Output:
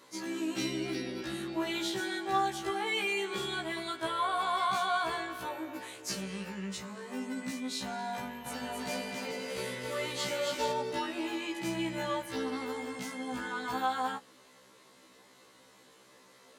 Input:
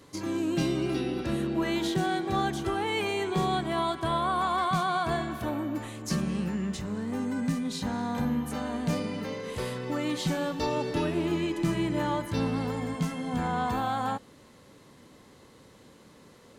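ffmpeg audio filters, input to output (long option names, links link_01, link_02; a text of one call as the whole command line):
ffmpeg -i in.wav -filter_complex "[0:a]highpass=frequency=730:poles=1,asettb=1/sr,asplit=3[link_01][link_02][link_03];[link_01]atrim=end=8.194[link_04];[link_02]atrim=start=8.19:end=10.72,asetpts=PTS-STARTPTS,afade=type=in:duration=0.004:curve=qsin,afade=type=out:start_time=2.526:duration=0.004:curve=qsin,aecho=1:1:270|432|529.2|587.5|622.5:0.631|0.398|0.251|0.158|0.1,atrim=end_sample=111573[link_05];[link_03]atrim=start=10.716[link_06];[link_04][link_05]acrossfade=duration=0.004:curve1=hsin:curve2=qsin[link_07];[link_07][link_06]acrossfade=duration=0.004:curve1=qsin:curve2=hsin,afftfilt=real='re*1.73*eq(mod(b,3),0)':imag='im*1.73*eq(mod(b,3),0)':win_size=2048:overlap=0.75,volume=2.5dB" out.wav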